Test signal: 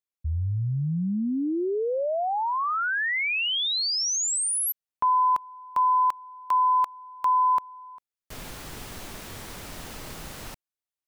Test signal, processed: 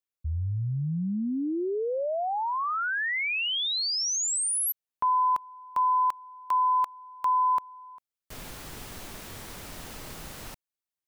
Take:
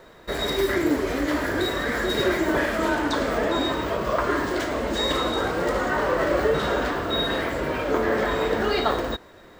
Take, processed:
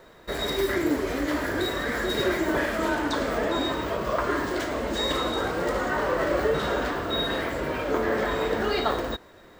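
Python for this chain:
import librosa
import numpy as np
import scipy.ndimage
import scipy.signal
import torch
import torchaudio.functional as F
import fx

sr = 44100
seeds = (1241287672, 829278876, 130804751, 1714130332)

y = fx.high_shelf(x, sr, hz=9900.0, db=2.5)
y = F.gain(torch.from_numpy(y), -2.5).numpy()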